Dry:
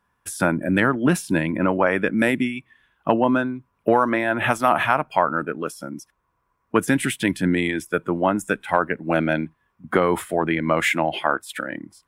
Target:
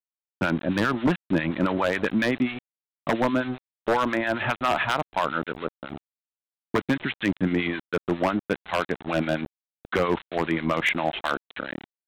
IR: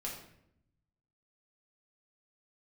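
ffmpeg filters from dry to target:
-filter_complex "[0:a]aresample=8000,aeval=exprs='val(0)*gte(abs(val(0)),0.0355)':channel_layout=same,aresample=44100,acrossover=split=1100[link_01][link_02];[link_01]aeval=exprs='val(0)*(1-0.7/2+0.7/2*cos(2*PI*7.4*n/s))':channel_layout=same[link_03];[link_02]aeval=exprs='val(0)*(1-0.7/2-0.7/2*cos(2*PI*7.4*n/s))':channel_layout=same[link_04];[link_03][link_04]amix=inputs=2:normalize=0,aeval=exprs='0.211*(abs(mod(val(0)/0.211+3,4)-2)-1)':channel_layout=same"

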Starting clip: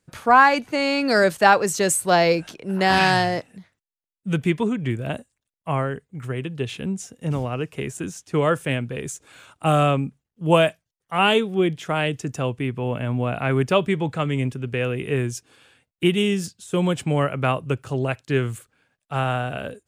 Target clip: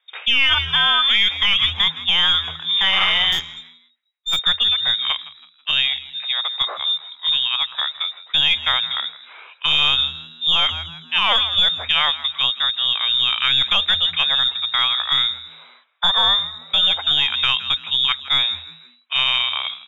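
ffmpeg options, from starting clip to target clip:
ffmpeg -i in.wav -filter_complex "[0:a]lowpass=frequency=3200:width_type=q:width=0.5098,lowpass=frequency=3200:width_type=q:width=0.6013,lowpass=frequency=3200:width_type=q:width=0.9,lowpass=frequency=3200:width_type=q:width=2.563,afreqshift=-3800,highpass=frequency=500:width=0.5412,highpass=frequency=500:width=1.3066,asplit=2[link_01][link_02];[link_02]aeval=exprs='clip(val(0),-1,0.112)':channel_layout=same,volume=-12dB[link_03];[link_01][link_03]amix=inputs=2:normalize=0,aemphasis=mode=reproduction:type=bsi,asplit=2[link_04][link_05];[link_05]asplit=3[link_06][link_07][link_08];[link_06]adelay=163,afreqshift=80,volume=-17.5dB[link_09];[link_07]adelay=326,afreqshift=160,volume=-26.1dB[link_10];[link_08]adelay=489,afreqshift=240,volume=-34.8dB[link_11];[link_09][link_10][link_11]amix=inputs=3:normalize=0[link_12];[link_04][link_12]amix=inputs=2:normalize=0,asettb=1/sr,asplit=3[link_13][link_14][link_15];[link_13]atrim=end=3.324[link_16];[link_14]atrim=start=3.32:end=4.39,asetpts=PTS-STARTPTS,afade=type=in:duration=0.004:curve=qsin,afade=type=out:start_time=1.066:duration=0.004:curve=qsin,aeval=exprs='0.282*(cos(1*acos(clip(val(0)/0.282,-1,1)))-cos(1*PI/2))+0.0224*(cos(3*acos(clip(val(0)/0.282,-1,1)))-cos(3*PI/2))+0.0126*(cos(8*acos(clip(val(0)/0.282,-1,1)))-cos(8*PI/2))':channel_layout=same[link_17];[link_15]atrim=start=4.386[link_18];[link_16][link_17]acrossfade=duration=0.004:curve1=hsin:curve2=qsin[link_19];[link_19][link_18]acrossfade=duration=0.004:curve1=qsin:curve2=hsin,alimiter=level_in=13dB:limit=-1dB:release=50:level=0:latency=1,volume=-6.5dB" out.wav

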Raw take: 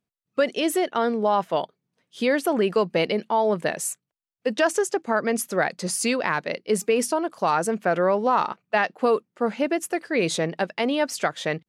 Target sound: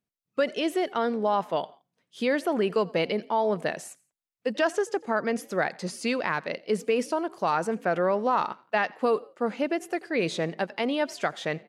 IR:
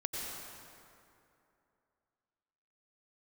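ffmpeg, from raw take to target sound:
-filter_complex "[0:a]acrossover=split=4800[link_01][link_02];[link_02]acompressor=threshold=-40dB:ratio=4:attack=1:release=60[link_03];[link_01][link_03]amix=inputs=2:normalize=0,asplit=3[link_04][link_05][link_06];[link_05]adelay=85,afreqshift=51,volume=-24dB[link_07];[link_06]adelay=170,afreqshift=102,volume=-32.6dB[link_08];[link_04][link_07][link_08]amix=inputs=3:normalize=0,asplit=2[link_09][link_10];[1:a]atrim=start_sample=2205,afade=type=out:start_time=0.2:duration=0.01,atrim=end_sample=9261[link_11];[link_10][link_11]afir=irnorm=-1:irlink=0,volume=-24.5dB[link_12];[link_09][link_12]amix=inputs=2:normalize=0,volume=-4dB"

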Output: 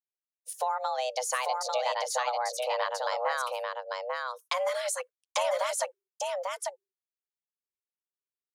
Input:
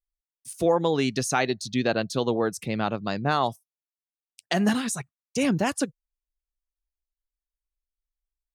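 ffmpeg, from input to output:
ffmpeg -i in.wav -af "agate=range=-33dB:threshold=-40dB:ratio=3:detection=peak,acompressor=threshold=-27dB:ratio=6,afreqshift=370,aecho=1:1:845:0.708" out.wav

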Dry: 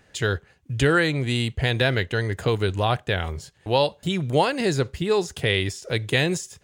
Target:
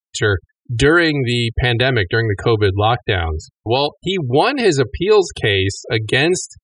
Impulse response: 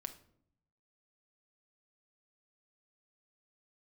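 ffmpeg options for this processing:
-filter_complex "[0:a]afftfilt=real='re*gte(hypot(re,im),0.0141)':imag='im*gte(hypot(re,im),0.0141)':win_size=1024:overlap=0.75,asplit=2[link_01][link_02];[link_02]alimiter=limit=-15dB:level=0:latency=1:release=40,volume=0dB[link_03];[link_01][link_03]amix=inputs=2:normalize=0,aecho=1:1:2.7:0.56,volume=1.5dB"

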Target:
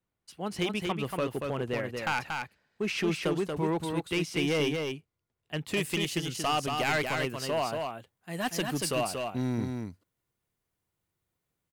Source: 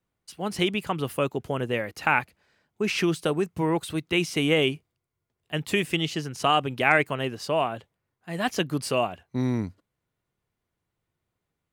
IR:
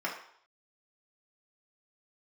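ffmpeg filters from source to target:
-af "asetnsamples=nb_out_samples=441:pad=0,asendcmd='5.77 highshelf g 9.5',highshelf=frequency=6300:gain=-3.5,asoftclip=type=hard:threshold=-19dB,aecho=1:1:233:0.596,volume=-4.5dB"

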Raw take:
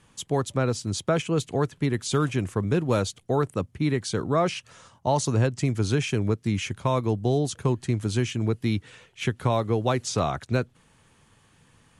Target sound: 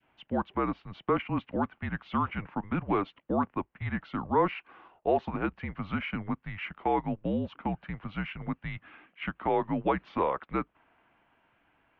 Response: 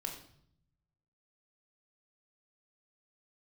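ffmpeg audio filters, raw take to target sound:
-af "adynamicequalizer=threshold=0.00891:dfrequency=1200:dqfactor=0.88:tfrequency=1200:tqfactor=0.88:attack=5:release=100:ratio=0.375:range=3.5:mode=boostabove:tftype=bell,highpass=frequency=310:width_type=q:width=0.5412,highpass=frequency=310:width_type=q:width=1.307,lowpass=frequency=3000:width_type=q:width=0.5176,lowpass=frequency=3000:width_type=q:width=0.7071,lowpass=frequency=3000:width_type=q:width=1.932,afreqshift=-190,volume=-5dB"

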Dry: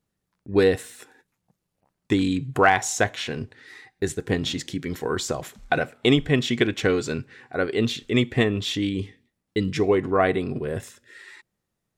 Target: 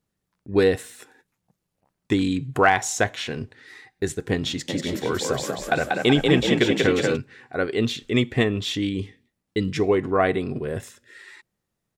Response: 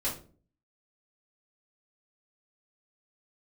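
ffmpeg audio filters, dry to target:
-filter_complex "[0:a]asplit=3[link_01][link_02][link_03];[link_01]afade=type=out:start_time=4.68:duration=0.02[link_04];[link_02]asplit=9[link_05][link_06][link_07][link_08][link_09][link_10][link_11][link_12][link_13];[link_06]adelay=188,afreqshift=39,volume=-3dB[link_14];[link_07]adelay=376,afreqshift=78,volume=-8dB[link_15];[link_08]adelay=564,afreqshift=117,volume=-13.1dB[link_16];[link_09]adelay=752,afreqshift=156,volume=-18.1dB[link_17];[link_10]adelay=940,afreqshift=195,volume=-23.1dB[link_18];[link_11]adelay=1128,afreqshift=234,volume=-28.2dB[link_19];[link_12]adelay=1316,afreqshift=273,volume=-33.2dB[link_20];[link_13]adelay=1504,afreqshift=312,volume=-38.3dB[link_21];[link_05][link_14][link_15][link_16][link_17][link_18][link_19][link_20][link_21]amix=inputs=9:normalize=0,afade=type=in:start_time=4.68:duration=0.02,afade=type=out:start_time=7.15:duration=0.02[link_22];[link_03]afade=type=in:start_time=7.15:duration=0.02[link_23];[link_04][link_22][link_23]amix=inputs=3:normalize=0"

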